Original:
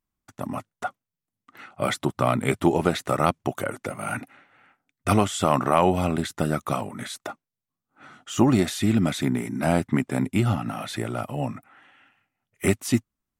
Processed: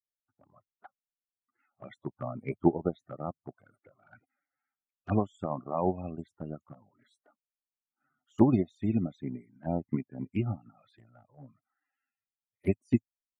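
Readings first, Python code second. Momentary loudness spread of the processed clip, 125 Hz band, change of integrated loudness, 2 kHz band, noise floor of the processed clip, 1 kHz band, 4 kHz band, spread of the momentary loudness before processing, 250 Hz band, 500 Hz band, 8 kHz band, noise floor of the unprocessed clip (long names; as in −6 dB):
16 LU, −8.5 dB, −7.0 dB, −20.5 dB, below −85 dBFS, −13.5 dB, below −25 dB, 13 LU, −7.0 dB, −9.0 dB, below −35 dB, below −85 dBFS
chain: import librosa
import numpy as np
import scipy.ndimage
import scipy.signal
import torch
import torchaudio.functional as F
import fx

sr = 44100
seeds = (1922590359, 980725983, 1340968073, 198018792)

y = fx.spec_topn(x, sr, count=32)
y = fx.env_flanger(y, sr, rest_ms=9.2, full_db=-20.5)
y = fx.upward_expand(y, sr, threshold_db=-33.0, expansion=2.5)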